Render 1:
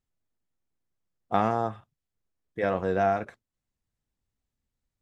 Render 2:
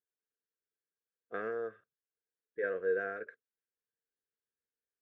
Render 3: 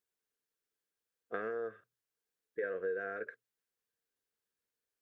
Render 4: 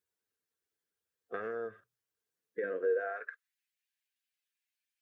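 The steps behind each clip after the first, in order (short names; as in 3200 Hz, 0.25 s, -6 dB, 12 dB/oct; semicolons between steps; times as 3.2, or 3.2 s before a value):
double band-pass 850 Hz, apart 1.8 oct
notches 60/120 Hz; compressor 5:1, threshold -38 dBFS, peak gain reduction 10.5 dB; gain +4 dB
bin magnitudes rounded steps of 15 dB; high-pass sweep 69 Hz -> 2400 Hz, 2.24–3.58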